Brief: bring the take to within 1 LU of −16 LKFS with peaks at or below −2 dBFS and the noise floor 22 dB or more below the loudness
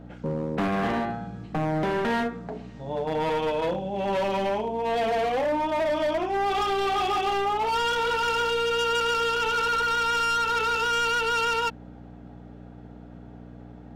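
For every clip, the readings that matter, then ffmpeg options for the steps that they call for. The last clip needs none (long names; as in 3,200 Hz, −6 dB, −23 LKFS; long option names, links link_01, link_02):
mains hum 60 Hz; hum harmonics up to 300 Hz; level of the hum −42 dBFS; integrated loudness −25.5 LKFS; sample peak −20.0 dBFS; target loudness −16.0 LKFS
→ -af "bandreject=frequency=60:width_type=h:width=4,bandreject=frequency=120:width_type=h:width=4,bandreject=frequency=180:width_type=h:width=4,bandreject=frequency=240:width_type=h:width=4,bandreject=frequency=300:width_type=h:width=4"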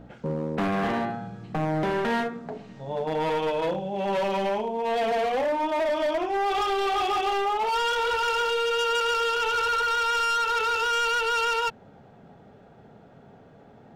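mains hum none found; integrated loudness −25.5 LKFS; sample peak −19.5 dBFS; target loudness −16.0 LKFS
→ -af "volume=9.5dB"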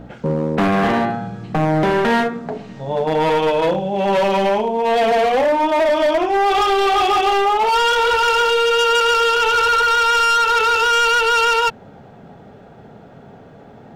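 integrated loudness −16.0 LKFS; sample peak −10.0 dBFS; background noise floor −42 dBFS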